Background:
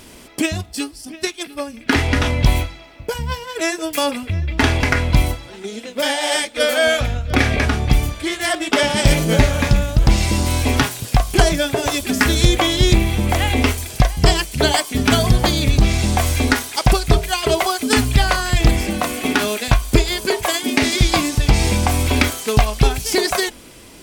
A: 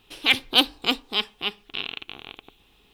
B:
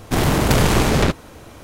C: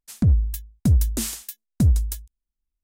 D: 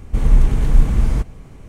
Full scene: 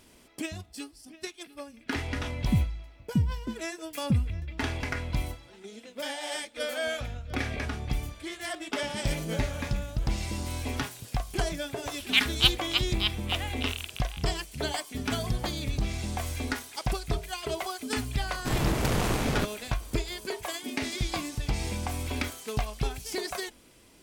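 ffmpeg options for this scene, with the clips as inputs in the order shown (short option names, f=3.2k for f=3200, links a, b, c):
-filter_complex "[0:a]volume=-15.5dB[a];[3:a]bandpass=f=180:t=q:w=0.86:csg=0[b];[1:a]highpass=1.2k[c];[b]atrim=end=2.83,asetpts=PTS-STARTPTS,volume=-4dB,afade=t=in:d=0.004:c=hsin,afade=t=out:st=2.826:d=0.004:c=hsin,adelay=2300[d];[c]atrim=end=2.93,asetpts=PTS-STARTPTS,volume=-3.5dB,afade=t=in:d=0.004:c=hsin,afade=t=out:st=2.926:d=0.004:c=hsin,adelay=11870[e];[2:a]atrim=end=1.63,asetpts=PTS-STARTPTS,volume=-11.5dB,afade=t=in:d=0.004:c=hsin,afade=t=out:st=1.626:d=0.004:c=hsin,adelay=18340[f];[a][d][e][f]amix=inputs=4:normalize=0"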